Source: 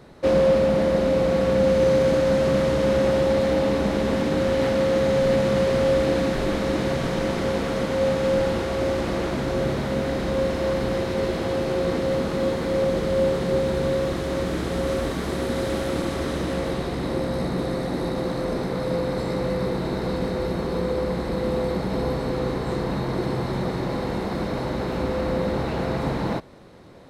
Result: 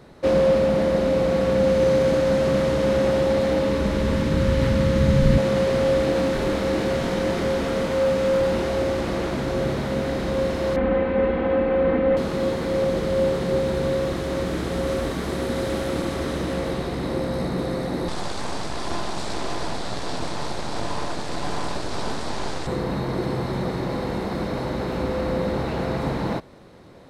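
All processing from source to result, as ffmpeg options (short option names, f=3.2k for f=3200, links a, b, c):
-filter_complex "[0:a]asettb=1/sr,asplit=3[a][b][c];[a]atrim=end=3.594[d];[b]atrim=start=3.59:end=5.38,asetpts=PTS-STARTPTS,afade=t=in:d=0.004:c=qsin,afade=t=out:st=1.786:d=0.004:c=qsin,asubboost=boost=12:cutoff=160,asuperstop=centerf=740:order=4:qfactor=4.7[e];[c]atrim=start=5.376[f];[d][e]acrossfade=d=0.004:c1=hsin:c2=qsin[g];[g][f]acrossfade=d=0.004:c1=qsin:c2=hsin,asettb=1/sr,asplit=3[h][i][j];[h]atrim=end=6.124[k];[i]atrim=start=6.12:end=8.82,asetpts=PTS-STARTPTS,afade=t=in:d=0.004:c=qsin,afade=t=out:st=2.696:d=0.004:c=qsin,asoftclip=type=hard:threshold=-19dB,asplit=2[l][m];[m]adelay=26,volume=-6dB[n];[l][n]amix=inputs=2:normalize=0,atrim=end_sample=119070[o];[j]atrim=start=8.816[p];[k][o]acrossfade=d=0.004:c1=hsin:c2=qsin[q];[q][p]acrossfade=d=0.004:c1=qsin:c2=hsin,asettb=1/sr,asplit=3[r][s][t];[r]atrim=end=10.764[u];[s]atrim=start=10.76:end=12.17,asetpts=PTS-STARTPTS,afade=t=in:d=0.004:c=qsin,afade=t=out:st=1.406:d=0.004:c=qsin,lowpass=f=2.5k:w=0.5412,lowpass=f=2.5k:w=1.3066,aecho=1:1:3.9:0.9,atrim=end_sample=62181[v];[t]atrim=start=12.166[w];[u][v]acrossfade=d=0.004:c1=hsin:c2=qsin[x];[x][w]acrossfade=d=0.004:c1=qsin:c2=hsin,asettb=1/sr,asplit=3[y][z][aa];[y]atrim=end=18.084[ab];[z]atrim=start=18.08:end=22.67,asetpts=PTS-STARTPTS,afade=t=in:d=0.004:c=qsin,afade=t=out:st=4.586:d=0.004:c=qsin,bass=f=250:g=-1,treble=f=4k:g=13,aeval=exprs='abs(val(0))':c=same,lowpass=f=8.7k:w=0.5412,lowpass=f=8.7k:w=1.3066[ac];[aa]atrim=start=22.666[ad];[ab][ac]acrossfade=d=0.004:c1=hsin:c2=qsin[ae];[ae][ad]acrossfade=d=0.004:c1=qsin:c2=hsin"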